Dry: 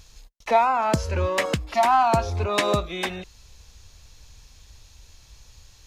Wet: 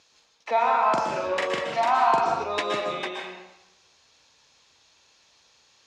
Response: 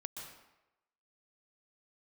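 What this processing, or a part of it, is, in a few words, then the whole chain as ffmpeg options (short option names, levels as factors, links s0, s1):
supermarket ceiling speaker: -filter_complex "[0:a]highpass=340,lowpass=5400[s0];[1:a]atrim=start_sample=2205[s1];[s0][s1]afir=irnorm=-1:irlink=0,asettb=1/sr,asplit=3[s2][s3][s4];[s2]atrim=end=0.534[s5];[s3]atrim=start=0.53:end=2.44,asetpts=PTS-STARTPTS,afade=t=in:d=0.004:c=qsin,afade=t=out:st=1.906:d=0.004:c=qsin,asplit=2[s6][s7];[s7]adelay=43,volume=0.668[s8];[s6][s8]amix=inputs=2:normalize=0,atrim=end_sample=84231[s9];[s4]atrim=start=2.436[s10];[s5][s9]acrossfade=d=0.004:c1=hsin:c2=qsin[s11];[s11][s10]acrossfade=d=0.004:c1=qsin:c2=hsin"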